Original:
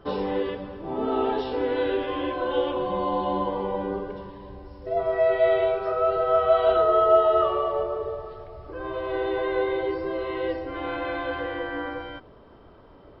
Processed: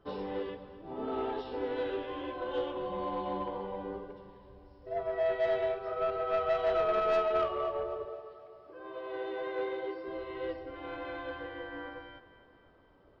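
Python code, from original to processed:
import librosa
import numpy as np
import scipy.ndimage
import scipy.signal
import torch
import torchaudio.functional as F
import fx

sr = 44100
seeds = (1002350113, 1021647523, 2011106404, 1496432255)

y = fx.highpass(x, sr, hz=220.0, slope=12, at=(8.05, 10.08))
y = 10.0 ** (-17.5 / 20.0) * np.tanh(y / 10.0 ** (-17.5 / 20.0))
y = fx.echo_feedback(y, sr, ms=256, feedback_pct=57, wet_db=-15)
y = fx.upward_expand(y, sr, threshold_db=-35.0, expansion=1.5)
y = y * 10.0 ** (-5.5 / 20.0)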